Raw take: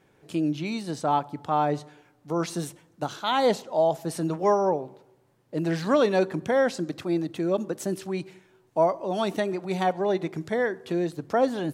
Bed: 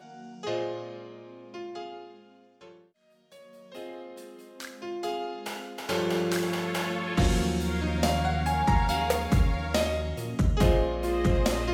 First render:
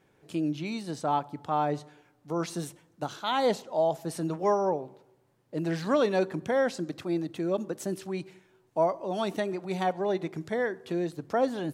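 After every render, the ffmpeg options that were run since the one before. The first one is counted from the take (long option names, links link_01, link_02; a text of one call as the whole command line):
ffmpeg -i in.wav -af "volume=-3.5dB" out.wav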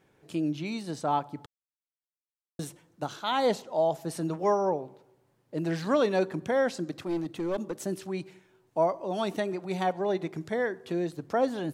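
ffmpeg -i in.wav -filter_complex "[0:a]asettb=1/sr,asplit=3[link_01][link_02][link_03];[link_01]atrim=end=6.914[link_04];[link_02]atrim=start=6.91:end=7.85,asetpts=PTS-STARTPTS,afade=type=in:duration=0.004:curve=qsin,afade=type=out:start_time=0.936:duration=0.004:curve=qsin,aeval=exprs='clip(val(0),-1,0.0398)':channel_layout=same[link_05];[link_03]atrim=start=7.846[link_06];[link_04][link_05]acrossfade=duration=0.004:curve1=hsin:curve2=qsin[link_07];[link_07][link_06]acrossfade=duration=0.004:curve1=qsin:curve2=hsin,asplit=3[link_08][link_09][link_10];[link_08]atrim=end=1.46,asetpts=PTS-STARTPTS,afade=type=out:start_time=1.456:duration=0.004:curve=hsin[link_11];[link_09]atrim=start=1.46:end=2.59,asetpts=PTS-STARTPTS,volume=0[link_12];[link_10]atrim=start=2.59,asetpts=PTS-STARTPTS,afade=type=in:duration=0.004:curve=hsin[link_13];[link_11][link_12][link_13]concat=n=3:v=0:a=1" out.wav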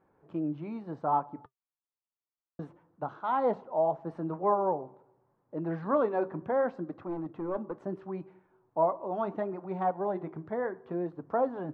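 ffmpeg -i in.wav -af "lowpass=frequency=1100:width_type=q:width=1.9,flanger=delay=3.5:depth=4.6:regen=-75:speed=0.72:shape=sinusoidal" out.wav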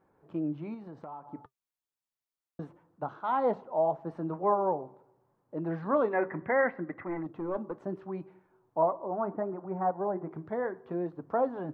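ffmpeg -i in.wav -filter_complex "[0:a]asettb=1/sr,asplit=3[link_01][link_02][link_03];[link_01]atrim=end=0.744[link_04];[link_02]atrim=start=0.74:end=1.28,asetpts=PTS-STARTPTS,afade=type=in:duration=0.004:curve=qsin,afade=type=out:start_time=0.536:duration=0.004:curve=qsin,acompressor=threshold=-40dB:ratio=8:attack=3.2:release=140:knee=1:detection=peak[link_05];[link_03]atrim=start=1.276[link_06];[link_04][link_05]acrossfade=duration=0.004:curve1=hsin:curve2=qsin[link_07];[link_07][link_06]acrossfade=duration=0.004:curve1=qsin:curve2=hsin,asettb=1/sr,asplit=3[link_08][link_09][link_10];[link_08]atrim=end=6.134[link_11];[link_09]atrim=start=6.13:end=7.23,asetpts=PTS-STARTPTS,afade=type=in:duration=0.004:curve=qsin,afade=type=out:start_time=1.096:duration=0.004:curve=qsin,lowpass=frequency=2000:width_type=q:width=15[link_12];[link_10]atrim=start=7.226[link_13];[link_11][link_12]acrossfade=duration=0.004:curve1=hsin:curve2=qsin[link_14];[link_14][link_13]acrossfade=duration=0.004:curve1=qsin:curve2=hsin,asettb=1/sr,asplit=3[link_15][link_16][link_17];[link_15]atrim=end=8.824[link_18];[link_16]atrim=start=8.82:end=10.31,asetpts=PTS-STARTPTS,afade=type=in:duration=0.004:curve=qsin,afade=type=out:start_time=1.486:duration=0.004:curve=qsin,lowpass=frequency=1700:width=0.5412,lowpass=frequency=1700:width=1.3066[link_19];[link_17]atrim=start=10.306[link_20];[link_18][link_19]acrossfade=duration=0.004:curve1=hsin:curve2=qsin[link_21];[link_21][link_20]acrossfade=duration=0.004:curve1=qsin:curve2=hsin" out.wav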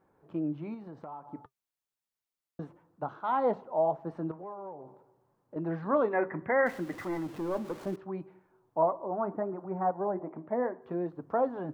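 ffmpeg -i in.wav -filter_complex "[0:a]asettb=1/sr,asplit=3[link_01][link_02][link_03];[link_01]atrim=end=4.314[link_04];[link_02]atrim=start=4.31:end=5.56,asetpts=PTS-STARTPTS,afade=type=in:duration=0.004:curve=qsin,afade=type=out:start_time=1.246:duration=0.004:curve=qsin,acompressor=threshold=-42dB:ratio=4:attack=3.2:release=140:knee=1:detection=peak[link_05];[link_03]atrim=start=5.556[link_06];[link_04][link_05]acrossfade=duration=0.004:curve1=hsin:curve2=qsin[link_07];[link_07][link_06]acrossfade=duration=0.004:curve1=qsin:curve2=hsin,asettb=1/sr,asplit=3[link_08][link_09][link_10];[link_08]atrim=end=6.664[link_11];[link_09]atrim=start=6.66:end=7.96,asetpts=PTS-STARTPTS,afade=type=in:duration=0.004:curve=qsin,afade=type=out:start_time=1.296:duration=0.004:curve=qsin,aeval=exprs='val(0)+0.5*0.00668*sgn(val(0))':channel_layout=same[link_12];[link_10]atrim=start=7.956[link_13];[link_11][link_12]acrossfade=duration=0.004:curve1=hsin:curve2=qsin[link_14];[link_14][link_13]acrossfade=duration=0.004:curve1=qsin:curve2=hsin,asettb=1/sr,asplit=3[link_15][link_16][link_17];[link_15]atrim=end=10.194[link_18];[link_16]atrim=start=10.19:end=10.82,asetpts=PTS-STARTPTS,afade=type=in:duration=0.004:curve=qsin,afade=type=out:start_time=0.626:duration=0.004:curve=qsin,highpass=220,equalizer=frequency=250:width_type=q:width=4:gain=8,equalizer=frequency=400:width_type=q:width=4:gain=-4,equalizer=frequency=600:width_type=q:width=4:gain=8,equalizer=frequency=900:width_type=q:width=4:gain=3,equalizer=frequency=1500:width_type=q:width=4:gain=-6,lowpass=frequency=2600:width=0.5412,lowpass=frequency=2600:width=1.3066[link_19];[link_17]atrim=start=10.816[link_20];[link_18][link_19]acrossfade=duration=0.004:curve1=hsin:curve2=qsin[link_21];[link_21][link_20]acrossfade=duration=0.004:curve1=qsin:curve2=hsin" out.wav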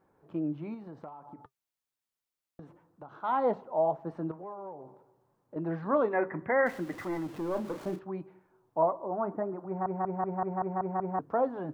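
ffmpeg -i in.wav -filter_complex "[0:a]asettb=1/sr,asplit=3[link_01][link_02][link_03];[link_01]atrim=end=1.084[link_04];[link_02]atrim=start=1.08:end=3.16,asetpts=PTS-STARTPTS,afade=type=in:duration=0.004:curve=qsin,afade=type=out:start_time=2.076:duration=0.004:curve=qsin,acompressor=threshold=-43dB:ratio=6:attack=3.2:release=140:knee=1:detection=peak[link_05];[link_03]atrim=start=3.156[link_06];[link_04][link_05]acrossfade=duration=0.004:curve1=hsin:curve2=qsin[link_07];[link_07][link_06]acrossfade=duration=0.004:curve1=qsin:curve2=hsin,asettb=1/sr,asplit=3[link_08][link_09][link_10];[link_08]atrim=end=7.534[link_11];[link_09]atrim=start=7.53:end=8,asetpts=PTS-STARTPTS,afade=type=in:duration=0.004:curve=qsin,afade=type=out:start_time=0.466:duration=0.004:curve=qsin,asplit=2[link_12][link_13];[link_13]adelay=33,volume=-7.5dB[link_14];[link_12][link_14]amix=inputs=2:normalize=0,atrim=end_sample=20727[link_15];[link_10]atrim=start=7.996[link_16];[link_11][link_15]acrossfade=duration=0.004:curve1=hsin:curve2=qsin[link_17];[link_17][link_16]acrossfade=duration=0.004:curve1=qsin:curve2=hsin,asplit=9[link_18][link_19][link_20][link_21][link_22][link_23][link_24][link_25][link_26];[link_18]atrim=end=9.862[link_27];[link_19]atrim=start=9.668:end=9.862[link_28];[link_20]atrim=start=9.668:end=9.862[link_29];[link_21]atrim=start=9.668:end=9.862[link_30];[link_22]atrim=start=9.668:end=9.862[link_31];[link_23]atrim=start=9.668:end=9.862[link_32];[link_24]atrim=start=9.668:end=9.862[link_33];[link_25]atrim=start=9.668:end=9.862[link_34];[link_26]atrim=start=11.188[link_35];[link_27][link_28]acrossfade=duration=0.004:curve1=hsin:curve2=hsin[link_36];[link_36][link_29]acrossfade=duration=0.004:curve1=hsin:curve2=hsin[link_37];[link_37][link_30]acrossfade=duration=0.004:curve1=hsin:curve2=hsin[link_38];[link_38][link_31]acrossfade=duration=0.004:curve1=hsin:curve2=hsin[link_39];[link_39][link_32]acrossfade=duration=0.004:curve1=hsin:curve2=hsin[link_40];[link_40][link_33]acrossfade=duration=0.004:curve1=hsin:curve2=hsin[link_41];[link_41][link_34]acrossfade=duration=0.004:curve1=hsin:curve2=hsin[link_42];[link_42][link_35]acrossfade=duration=0.004:curve1=hsin:curve2=hsin" out.wav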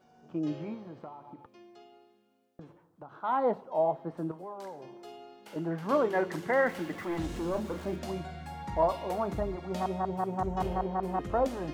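ffmpeg -i in.wav -i bed.wav -filter_complex "[1:a]volume=-15.5dB[link_01];[0:a][link_01]amix=inputs=2:normalize=0" out.wav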